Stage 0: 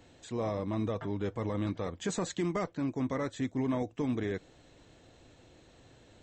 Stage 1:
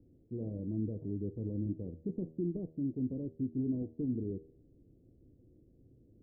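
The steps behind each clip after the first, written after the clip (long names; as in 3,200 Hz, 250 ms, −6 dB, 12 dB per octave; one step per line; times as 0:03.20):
inverse Chebyshev low-pass filter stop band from 1,300 Hz, stop band 60 dB
hum removal 79.22 Hz, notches 36
level −1.5 dB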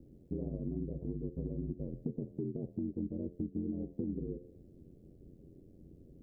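downward compressor, threshold −41 dBFS, peak gain reduction 11.5 dB
ring modulation 44 Hz
level +9 dB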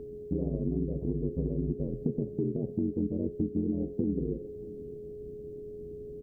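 steady tone 420 Hz −47 dBFS
single-tap delay 634 ms −19 dB
level +7 dB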